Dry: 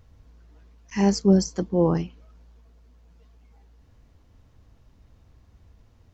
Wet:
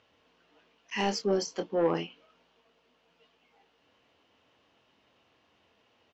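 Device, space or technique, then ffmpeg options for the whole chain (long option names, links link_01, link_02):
intercom: -filter_complex "[0:a]highpass=410,lowpass=4500,equalizer=frequency=2900:width_type=o:width=0.49:gain=10,asoftclip=type=tanh:threshold=-19dB,asplit=2[link_01][link_02];[link_02]adelay=24,volume=-8.5dB[link_03];[link_01][link_03]amix=inputs=2:normalize=0"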